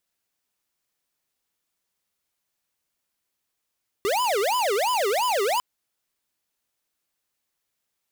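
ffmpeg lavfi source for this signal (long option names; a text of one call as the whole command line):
ffmpeg -f lavfi -i "aevalsrc='0.0708*(2*lt(mod((699.5*t-310.5/(2*PI*2.9)*sin(2*PI*2.9*t)),1),0.5)-1)':duration=1.55:sample_rate=44100" out.wav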